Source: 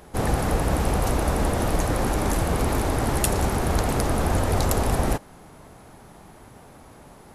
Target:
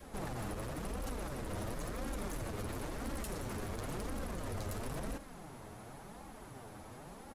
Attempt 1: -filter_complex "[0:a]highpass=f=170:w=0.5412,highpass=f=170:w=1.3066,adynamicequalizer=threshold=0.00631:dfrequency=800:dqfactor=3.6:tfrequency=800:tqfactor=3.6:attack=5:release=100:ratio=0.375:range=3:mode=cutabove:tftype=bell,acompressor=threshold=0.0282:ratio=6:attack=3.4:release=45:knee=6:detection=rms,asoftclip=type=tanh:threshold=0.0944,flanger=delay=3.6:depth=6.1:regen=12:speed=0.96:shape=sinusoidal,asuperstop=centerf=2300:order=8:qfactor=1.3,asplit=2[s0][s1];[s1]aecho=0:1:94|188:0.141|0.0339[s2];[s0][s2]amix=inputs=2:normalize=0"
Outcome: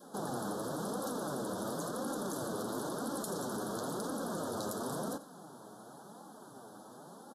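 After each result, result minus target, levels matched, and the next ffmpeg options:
saturation: distortion -16 dB; 125 Hz band -9.0 dB; 2 kHz band -5.0 dB
-filter_complex "[0:a]highpass=f=170:w=0.5412,highpass=f=170:w=1.3066,adynamicequalizer=threshold=0.00631:dfrequency=800:dqfactor=3.6:tfrequency=800:tqfactor=3.6:attack=5:release=100:ratio=0.375:range=3:mode=cutabove:tftype=bell,acompressor=threshold=0.0282:ratio=6:attack=3.4:release=45:knee=6:detection=rms,asoftclip=type=tanh:threshold=0.0282,flanger=delay=3.6:depth=6.1:regen=12:speed=0.96:shape=sinusoidal,asuperstop=centerf=2300:order=8:qfactor=1.3,asplit=2[s0][s1];[s1]aecho=0:1:94|188:0.141|0.0339[s2];[s0][s2]amix=inputs=2:normalize=0"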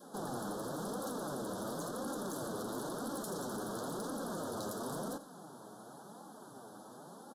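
125 Hz band -8.5 dB; 2 kHz band -5.0 dB
-filter_complex "[0:a]adynamicequalizer=threshold=0.00631:dfrequency=800:dqfactor=3.6:tfrequency=800:tqfactor=3.6:attack=5:release=100:ratio=0.375:range=3:mode=cutabove:tftype=bell,acompressor=threshold=0.0282:ratio=6:attack=3.4:release=45:knee=6:detection=rms,asoftclip=type=tanh:threshold=0.0282,flanger=delay=3.6:depth=6.1:regen=12:speed=0.96:shape=sinusoidal,asuperstop=centerf=2300:order=8:qfactor=1.3,asplit=2[s0][s1];[s1]aecho=0:1:94|188:0.141|0.0339[s2];[s0][s2]amix=inputs=2:normalize=0"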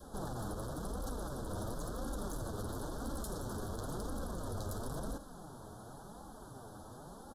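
2 kHz band -5.5 dB
-filter_complex "[0:a]adynamicequalizer=threshold=0.00631:dfrequency=800:dqfactor=3.6:tfrequency=800:tqfactor=3.6:attack=5:release=100:ratio=0.375:range=3:mode=cutabove:tftype=bell,acompressor=threshold=0.0282:ratio=6:attack=3.4:release=45:knee=6:detection=rms,asoftclip=type=tanh:threshold=0.0282,flanger=delay=3.6:depth=6.1:regen=12:speed=0.96:shape=sinusoidal,asplit=2[s0][s1];[s1]aecho=0:1:94|188:0.141|0.0339[s2];[s0][s2]amix=inputs=2:normalize=0"

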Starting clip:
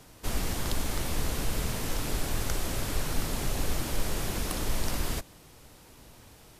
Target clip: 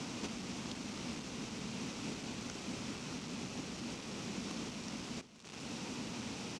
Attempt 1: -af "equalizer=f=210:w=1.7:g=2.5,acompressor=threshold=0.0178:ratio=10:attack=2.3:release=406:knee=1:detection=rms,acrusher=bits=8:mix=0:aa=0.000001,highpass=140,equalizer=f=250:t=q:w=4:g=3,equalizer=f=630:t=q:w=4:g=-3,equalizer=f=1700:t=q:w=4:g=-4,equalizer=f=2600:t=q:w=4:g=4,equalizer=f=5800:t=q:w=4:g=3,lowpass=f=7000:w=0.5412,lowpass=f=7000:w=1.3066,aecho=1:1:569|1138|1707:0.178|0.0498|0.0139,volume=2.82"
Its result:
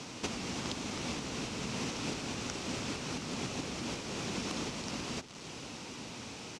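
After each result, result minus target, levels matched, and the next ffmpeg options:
compression: peak gain reduction -8 dB; 250 Hz band -2.0 dB
-af "equalizer=f=210:w=1.7:g=2.5,acompressor=threshold=0.00708:ratio=10:attack=2.3:release=406:knee=1:detection=rms,acrusher=bits=8:mix=0:aa=0.000001,highpass=140,equalizer=f=250:t=q:w=4:g=3,equalizer=f=630:t=q:w=4:g=-3,equalizer=f=1700:t=q:w=4:g=-4,equalizer=f=2600:t=q:w=4:g=4,equalizer=f=5800:t=q:w=4:g=3,lowpass=f=7000:w=0.5412,lowpass=f=7000:w=1.3066,aecho=1:1:569|1138|1707:0.178|0.0498|0.0139,volume=2.82"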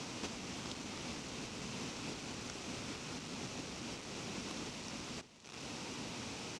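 250 Hz band -3.0 dB
-af "equalizer=f=210:w=1.7:g=9,acompressor=threshold=0.00708:ratio=10:attack=2.3:release=406:knee=1:detection=rms,acrusher=bits=8:mix=0:aa=0.000001,highpass=140,equalizer=f=250:t=q:w=4:g=3,equalizer=f=630:t=q:w=4:g=-3,equalizer=f=1700:t=q:w=4:g=-4,equalizer=f=2600:t=q:w=4:g=4,equalizer=f=5800:t=q:w=4:g=3,lowpass=f=7000:w=0.5412,lowpass=f=7000:w=1.3066,aecho=1:1:569|1138|1707:0.178|0.0498|0.0139,volume=2.82"

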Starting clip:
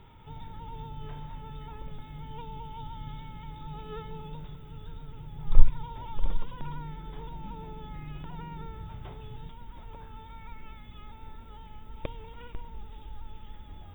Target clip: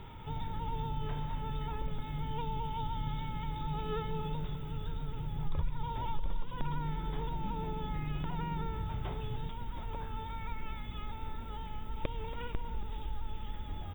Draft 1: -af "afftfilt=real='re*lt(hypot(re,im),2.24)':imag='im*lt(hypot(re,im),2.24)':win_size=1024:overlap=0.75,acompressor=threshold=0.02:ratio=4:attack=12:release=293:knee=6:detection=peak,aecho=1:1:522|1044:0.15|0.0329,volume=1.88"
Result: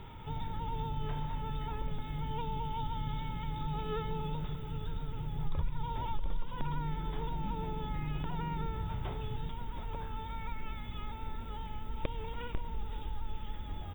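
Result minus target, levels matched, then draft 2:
echo 243 ms late
-af "afftfilt=real='re*lt(hypot(re,im),2.24)':imag='im*lt(hypot(re,im),2.24)':win_size=1024:overlap=0.75,acompressor=threshold=0.02:ratio=4:attack=12:release=293:knee=6:detection=peak,aecho=1:1:279|558:0.15|0.0329,volume=1.88"

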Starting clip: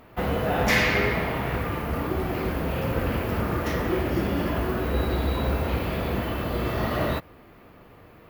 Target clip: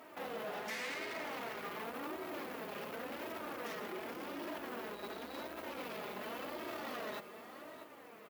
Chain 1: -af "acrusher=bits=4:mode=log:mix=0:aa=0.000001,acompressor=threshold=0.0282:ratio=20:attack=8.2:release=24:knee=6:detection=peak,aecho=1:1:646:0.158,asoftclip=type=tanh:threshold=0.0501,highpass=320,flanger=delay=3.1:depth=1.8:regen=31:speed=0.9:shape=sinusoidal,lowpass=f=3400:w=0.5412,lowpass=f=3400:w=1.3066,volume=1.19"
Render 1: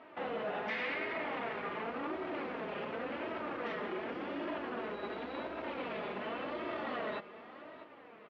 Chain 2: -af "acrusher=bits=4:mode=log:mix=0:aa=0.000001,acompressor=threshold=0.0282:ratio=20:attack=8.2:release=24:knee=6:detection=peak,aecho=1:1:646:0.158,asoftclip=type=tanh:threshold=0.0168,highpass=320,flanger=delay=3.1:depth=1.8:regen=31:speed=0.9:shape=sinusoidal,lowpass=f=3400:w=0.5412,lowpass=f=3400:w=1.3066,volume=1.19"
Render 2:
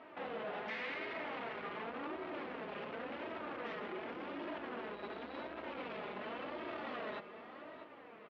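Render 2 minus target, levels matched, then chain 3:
4 kHz band -2.5 dB
-af "acrusher=bits=4:mode=log:mix=0:aa=0.000001,acompressor=threshold=0.0282:ratio=20:attack=8.2:release=24:knee=6:detection=peak,aecho=1:1:646:0.158,asoftclip=type=tanh:threshold=0.0168,highpass=320,flanger=delay=3.1:depth=1.8:regen=31:speed=0.9:shape=sinusoidal,volume=1.19"

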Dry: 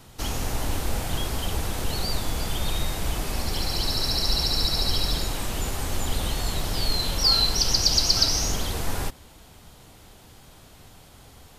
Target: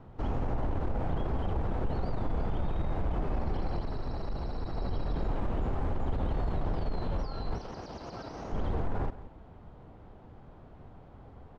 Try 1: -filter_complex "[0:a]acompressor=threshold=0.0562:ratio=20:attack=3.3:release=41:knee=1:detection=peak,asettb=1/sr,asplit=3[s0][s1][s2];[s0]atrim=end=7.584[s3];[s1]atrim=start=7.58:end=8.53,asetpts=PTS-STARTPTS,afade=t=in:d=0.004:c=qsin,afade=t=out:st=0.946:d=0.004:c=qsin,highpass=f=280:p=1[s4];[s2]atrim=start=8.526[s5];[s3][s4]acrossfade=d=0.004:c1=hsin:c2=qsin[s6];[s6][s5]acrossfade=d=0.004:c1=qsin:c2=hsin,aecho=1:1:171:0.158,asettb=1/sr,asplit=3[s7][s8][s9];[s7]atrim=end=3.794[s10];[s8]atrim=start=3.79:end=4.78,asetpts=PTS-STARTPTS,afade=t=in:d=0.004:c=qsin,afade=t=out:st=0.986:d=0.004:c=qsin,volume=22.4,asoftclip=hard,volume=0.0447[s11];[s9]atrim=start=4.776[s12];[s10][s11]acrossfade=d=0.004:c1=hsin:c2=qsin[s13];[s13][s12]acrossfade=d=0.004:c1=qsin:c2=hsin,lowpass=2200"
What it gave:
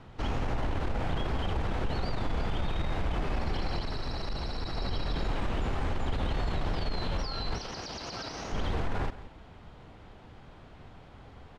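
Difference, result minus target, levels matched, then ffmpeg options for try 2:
2 kHz band +7.5 dB
-filter_complex "[0:a]acompressor=threshold=0.0562:ratio=20:attack=3.3:release=41:knee=1:detection=peak,asettb=1/sr,asplit=3[s0][s1][s2];[s0]atrim=end=7.584[s3];[s1]atrim=start=7.58:end=8.53,asetpts=PTS-STARTPTS,afade=t=in:d=0.004:c=qsin,afade=t=out:st=0.946:d=0.004:c=qsin,highpass=f=280:p=1[s4];[s2]atrim=start=8.526[s5];[s3][s4]acrossfade=d=0.004:c1=hsin:c2=qsin[s6];[s6][s5]acrossfade=d=0.004:c1=qsin:c2=hsin,aecho=1:1:171:0.158,asettb=1/sr,asplit=3[s7][s8][s9];[s7]atrim=end=3.794[s10];[s8]atrim=start=3.79:end=4.78,asetpts=PTS-STARTPTS,afade=t=in:d=0.004:c=qsin,afade=t=out:st=0.986:d=0.004:c=qsin,volume=22.4,asoftclip=hard,volume=0.0447[s11];[s9]atrim=start=4.776[s12];[s10][s11]acrossfade=d=0.004:c1=hsin:c2=qsin[s13];[s13][s12]acrossfade=d=0.004:c1=qsin:c2=hsin,lowpass=1000"

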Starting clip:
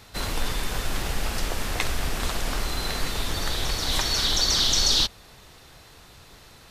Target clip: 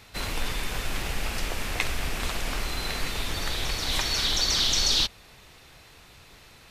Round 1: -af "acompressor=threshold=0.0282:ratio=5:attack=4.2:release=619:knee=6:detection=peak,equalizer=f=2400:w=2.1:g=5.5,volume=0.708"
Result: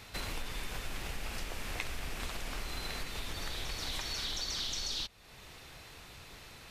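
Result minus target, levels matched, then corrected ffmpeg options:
compression: peak gain reduction +14.5 dB
-af "equalizer=f=2400:w=2.1:g=5.5,volume=0.708"

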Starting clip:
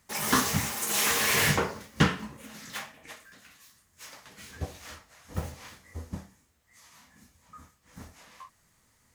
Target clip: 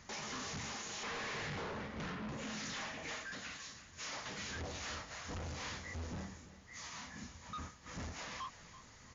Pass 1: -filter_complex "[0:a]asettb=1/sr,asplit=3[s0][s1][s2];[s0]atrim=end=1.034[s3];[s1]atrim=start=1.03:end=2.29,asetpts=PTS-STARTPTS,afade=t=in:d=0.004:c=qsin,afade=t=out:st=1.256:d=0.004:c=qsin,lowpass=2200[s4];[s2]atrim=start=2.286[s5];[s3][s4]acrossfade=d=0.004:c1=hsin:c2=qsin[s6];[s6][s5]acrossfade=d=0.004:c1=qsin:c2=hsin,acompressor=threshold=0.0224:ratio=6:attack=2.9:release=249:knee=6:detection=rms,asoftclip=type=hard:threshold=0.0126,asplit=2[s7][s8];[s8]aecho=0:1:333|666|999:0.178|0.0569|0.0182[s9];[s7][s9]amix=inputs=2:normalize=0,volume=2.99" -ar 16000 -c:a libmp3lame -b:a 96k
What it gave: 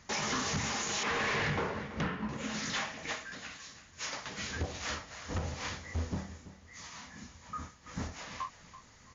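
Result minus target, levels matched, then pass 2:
hard clipper: distortion -8 dB
-filter_complex "[0:a]asettb=1/sr,asplit=3[s0][s1][s2];[s0]atrim=end=1.034[s3];[s1]atrim=start=1.03:end=2.29,asetpts=PTS-STARTPTS,afade=t=in:d=0.004:c=qsin,afade=t=out:st=1.256:d=0.004:c=qsin,lowpass=2200[s4];[s2]atrim=start=2.286[s5];[s3][s4]acrossfade=d=0.004:c1=hsin:c2=qsin[s6];[s6][s5]acrossfade=d=0.004:c1=qsin:c2=hsin,acompressor=threshold=0.0224:ratio=6:attack=2.9:release=249:knee=6:detection=rms,asoftclip=type=hard:threshold=0.00316,asplit=2[s7][s8];[s8]aecho=0:1:333|666|999:0.178|0.0569|0.0182[s9];[s7][s9]amix=inputs=2:normalize=0,volume=2.99" -ar 16000 -c:a libmp3lame -b:a 96k

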